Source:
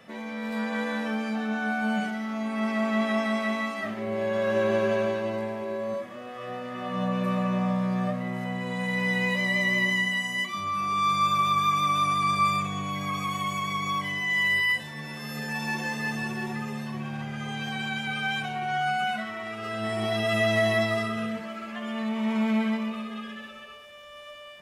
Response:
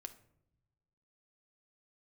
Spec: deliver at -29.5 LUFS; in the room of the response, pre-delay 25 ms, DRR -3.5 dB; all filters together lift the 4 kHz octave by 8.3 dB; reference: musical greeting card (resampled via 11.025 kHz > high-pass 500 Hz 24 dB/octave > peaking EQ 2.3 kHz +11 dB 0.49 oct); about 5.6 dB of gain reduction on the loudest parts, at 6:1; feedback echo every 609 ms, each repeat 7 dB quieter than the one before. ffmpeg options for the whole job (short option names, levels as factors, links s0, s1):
-filter_complex "[0:a]equalizer=f=4000:t=o:g=8,acompressor=threshold=0.0562:ratio=6,aecho=1:1:609|1218|1827|2436|3045:0.447|0.201|0.0905|0.0407|0.0183,asplit=2[s0][s1];[1:a]atrim=start_sample=2205,adelay=25[s2];[s1][s2]afir=irnorm=-1:irlink=0,volume=2.66[s3];[s0][s3]amix=inputs=2:normalize=0,aresample=11025,aresample=44100,highpass=f=500:w=0.5412,highpass=f=500:w=1.3066,equalizer=f=2300:t=o:w=0.49:g=11,volume=0.335"